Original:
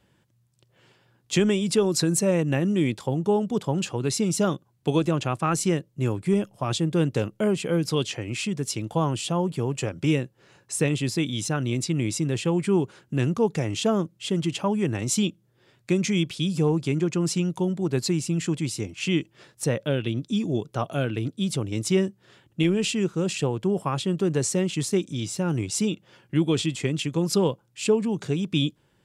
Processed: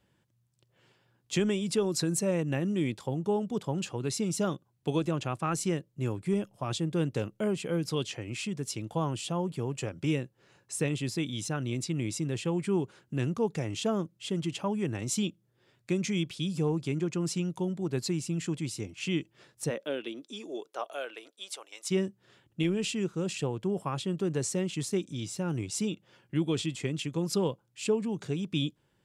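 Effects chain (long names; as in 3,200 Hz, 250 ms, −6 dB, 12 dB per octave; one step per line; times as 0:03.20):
0:19.69–0:21.90: high-pass filter 230 Hz → 750 Hz 24 dB per octave
level −6.5 dB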